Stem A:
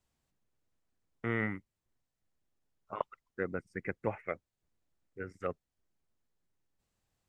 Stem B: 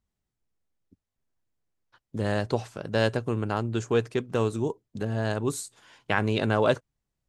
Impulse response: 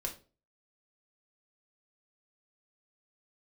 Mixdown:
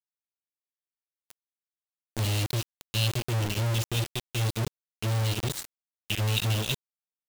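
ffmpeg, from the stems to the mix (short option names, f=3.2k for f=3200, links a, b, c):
-filter_complex "[0:a]volume=2dB,asplit=2[a][b];[b]volume=-20.5dB[c];[1:a]volume=2.5dB,asplit=2[d][e];[e]volume=-11dB[f];[2:a]atrim=start_sample=2205[g];[c][f]amix=inputs=2:normalize=0[h];[h][g]afir=irnorm=-1:irlink=0[i];[a][d][i]amix=inputs=3:normalize=0,firequalizer=gain_entry='entry(110,0);entry(160,-9);entry(1000,-28);entry(2800,7);entry(4200,2);entry(7900,-6)':delay=0.05:min_phase=1,acrossover=split=220|3000[j][k][l];[k]acompressor=threshold=-54dB:ratio=2[m];[j][m][l]amix=inputs=3:normalize=0,acrusher=bits=4:mix=0:aa=0.000001"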